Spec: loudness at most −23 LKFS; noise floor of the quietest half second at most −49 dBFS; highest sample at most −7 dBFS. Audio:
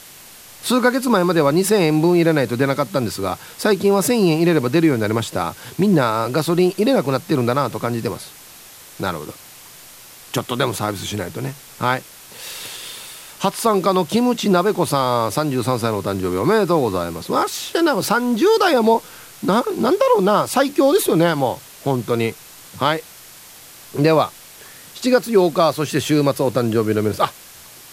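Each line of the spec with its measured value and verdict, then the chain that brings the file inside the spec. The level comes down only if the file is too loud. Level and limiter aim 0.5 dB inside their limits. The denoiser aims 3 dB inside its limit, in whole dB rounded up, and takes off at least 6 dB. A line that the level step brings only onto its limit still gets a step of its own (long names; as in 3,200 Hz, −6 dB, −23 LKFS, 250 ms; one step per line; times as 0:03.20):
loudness −18.5 LKFS: out of spec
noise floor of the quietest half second −42 dBFS: out of spec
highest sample −2.5 dBFS: out of spec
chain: broadband denoise 6 dB, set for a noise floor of −42 dBFS
level −5 dB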